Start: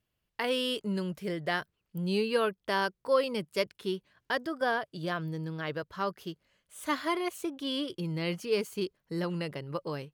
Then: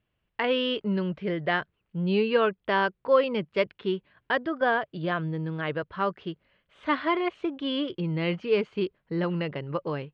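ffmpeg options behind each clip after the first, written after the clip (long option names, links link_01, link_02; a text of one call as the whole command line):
ffmpeg -i in.wav -af "lowpass=frequency=3200:width=0.5412,lowpass=frequency=3200:width=1.3066,volume=5dB" out.wav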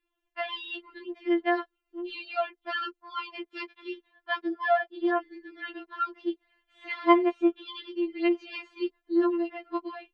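ffmpeg -i in.wav -af "afftfilt=real='re*4*eq(mod(b,16),0)':imag='im*4*eq(mod(b,16),0)':win_size=2048:overlap=0.75" out.wav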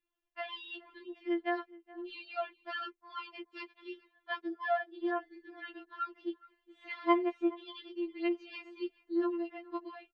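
ffmpeg -i in.wav -filter_complex "[0:a]asplit=2[link_01][link_02];[link_02]adelay=419.8,volume=-21dB,highshelf=frequency=4000:gain=-9.45[link_03];[link_01][link_03]amix=inputs=2:normalize=0,volume=-7.5dB" out.wav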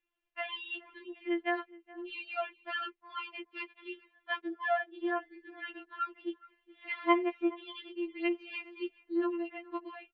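ffmpeg -i in.wav -af "lowpass=frequency=2700:width_type=q:width=2" out.wav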